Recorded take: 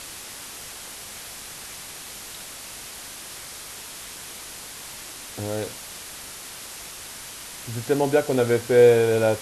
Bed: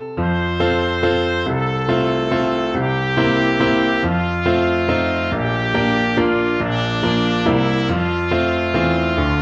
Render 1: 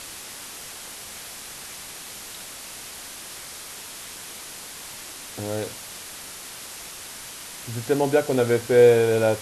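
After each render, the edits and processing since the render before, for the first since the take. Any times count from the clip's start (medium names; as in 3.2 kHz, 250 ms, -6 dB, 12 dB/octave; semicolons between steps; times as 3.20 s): de-hum 50 Hz, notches 3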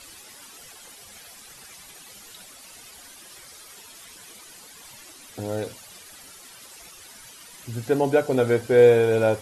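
noise reduction 12 dB, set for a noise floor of -39 dBFS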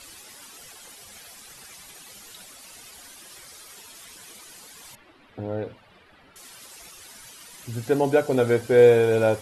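4.95–6.36 s: distance through air 440 m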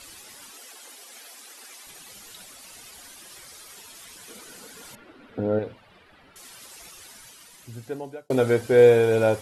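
0.52–1.87 s: steep high-pass 230 Hz 72 dB/octave; 4.28–5.59 s: small resonant body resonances 240/450/1400 Hz, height 9 dB, ringing for 20 ms; 6.99–8.30 s: fade out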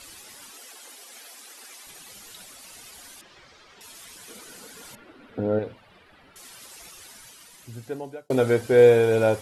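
3.21–3.81 s: distance through air 190 m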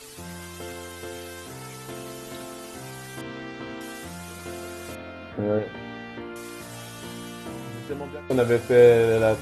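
add bed -20.5 dB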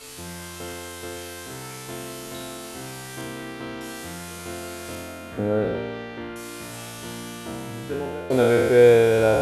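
spectral sustain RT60 1.80 s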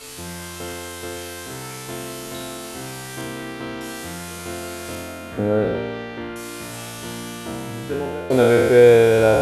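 trim +3.5 dB; peak limiter -3 dBFS, peak gain reduction 1.5 dB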